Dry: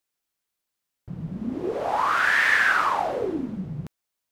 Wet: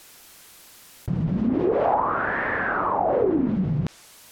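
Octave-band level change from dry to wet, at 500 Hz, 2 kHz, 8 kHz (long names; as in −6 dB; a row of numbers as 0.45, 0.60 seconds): +6.5 dB, −7.0 dB, can't be measured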